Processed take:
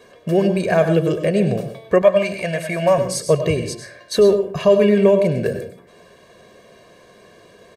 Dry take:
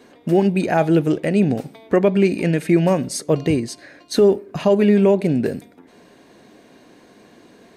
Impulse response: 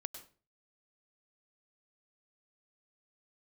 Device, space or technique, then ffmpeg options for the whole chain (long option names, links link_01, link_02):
microphone above a desk: -filter_complex "[0:a]aecho=1:1:1.8:0.78[link_01];[1:a]atrim=start_sample=2205[link_02];[link_01][link_02]afir=irnorm=-1:irlink=0,asettb=1/sr,asplit=3[link_03][link_04][link_05];[link_03]atrim=end=2.024[link_06];[link_04]atrim=start=2.02:end=2.98,asetpts=PTS-STARTPTS,afade=type=in:duration=0.004:curve=qsin,afade=type=out:start_time=0.956:duration=0.004:curve=qsin,lowshelf=frequency=520:width_type=q:width=3:gain=-7[link_07];[link_05]atrim=start=2.976[link_08];[link_06][link_07]acrossfade=duration=0.004:curve1=hsin:curve2=qsin[link_09];[link_09][link_08]acrossfade=duration=0.004:curve1=qsin:curve2=hsin,volume=2.5dB"